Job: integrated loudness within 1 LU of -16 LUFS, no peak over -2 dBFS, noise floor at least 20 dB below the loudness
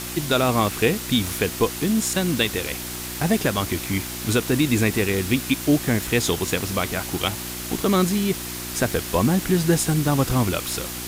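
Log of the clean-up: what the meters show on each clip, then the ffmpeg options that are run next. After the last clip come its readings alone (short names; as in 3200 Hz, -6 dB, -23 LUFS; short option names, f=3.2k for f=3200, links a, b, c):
hum 60 Hz; harmonics up to 360 Hz; hum level -35 dBFS; noise floor -32 dBFS; noise floor target -42 dBFS; loudness -22.0 LUFS; peak -6.5 dBFS; loudness target -16.0 LUFS
-> -af "bandreject=f=60:t=h:w=4,bandreject=f=120:t=h:w=4,bandreject=f=180:t=h:w=4,bandreject=f=240:t=h:w=4,bandreject=f=300:t=h:w=4,bandreject=f=360:t=h:w=4"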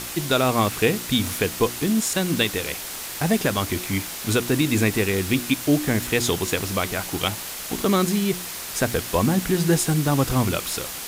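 hum none; noise floor -33 dBFS; noise floor target -43 dBFS
-> -af "afftdn=nr=10:nf=-33"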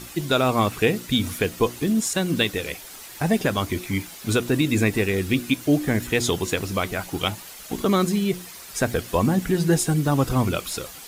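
noise floor -41 dBFS; noise floor target -43 dBFS
-> -af "afftdn=nr=6:nf=-41"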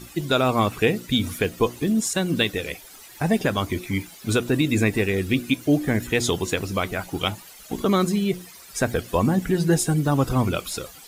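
noise floor -45 dBFS; loudness -23.0 LUFS; peak -7.5 dBFS; loudness target -16.0 LUFS
-> -af "volume=7dB,alimiter=limit=-2dB:level=0:latency=1"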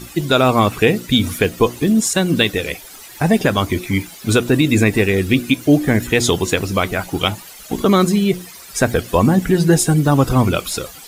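loudness -16.5 LUFS; peak -2.0 dBFS; noise floor -38 dBFS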